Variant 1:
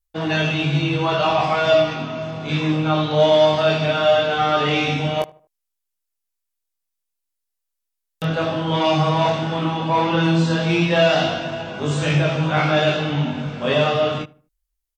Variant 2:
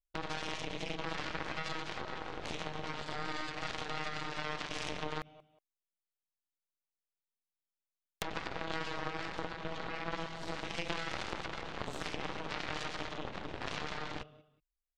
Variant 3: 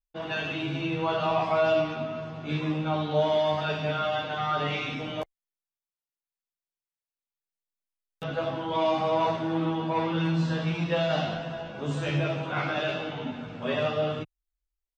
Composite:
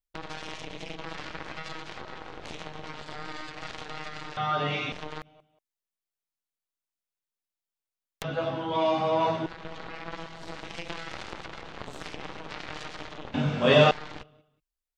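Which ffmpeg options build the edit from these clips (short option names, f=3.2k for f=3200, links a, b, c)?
-filter_complex "[2:a]asplit=2[a][b];[1:a]asplit=4[c][d][e][f];[c]atrim=end=4.372[g];[a]atrim=start=4.368:end=4.922[h];[d]atrim=start=4.918:end=8.242[i];[b]atrim=start=8.238:end=9.462[j];[e]atrim=start=9.458:end=13.342[k];[0:a]atrim=start=13.338:end=13.912[l];[f]atrim=start=13.908[m];[g][h]acrossfade=d=0.004:c1=hsin:c2=hsin[n];[n][i]acrossfade=d=0.004:c1=hsin:c2=hsin[o];[o][j]acrossfade=d=0.004:c1=hsin:c2=hsin[p];[p][k]acrossfade=d=0.004:c1=hsin:c2=hsin[q];[q][l]acrossfade=d=0.004:c1=hsin:c2=hsin[r];[r][m]acrossfade=d=0.004:c1=hsin:c2=hsin"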